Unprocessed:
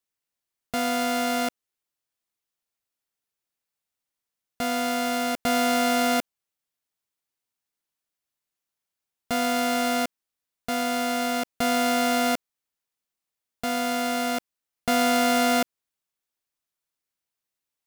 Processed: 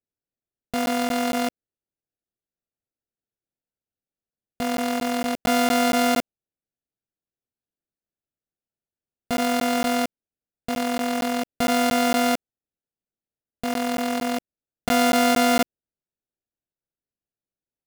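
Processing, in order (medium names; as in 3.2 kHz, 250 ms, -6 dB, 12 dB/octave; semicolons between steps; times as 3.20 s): local Wiener filter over 41 samples; crackling interface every 0.23 s, samples 512, zero, from 0.40 s; trim +3.5 dB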